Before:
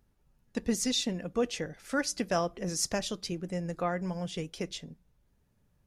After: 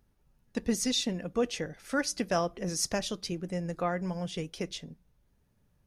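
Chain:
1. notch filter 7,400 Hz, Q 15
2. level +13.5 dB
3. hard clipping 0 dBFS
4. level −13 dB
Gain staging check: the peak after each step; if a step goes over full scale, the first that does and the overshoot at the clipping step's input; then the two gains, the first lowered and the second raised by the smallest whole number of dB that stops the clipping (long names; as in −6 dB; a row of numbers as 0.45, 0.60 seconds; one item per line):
−16.0, −2.5, −2.5, −15.5 dBFS
no step passes full scale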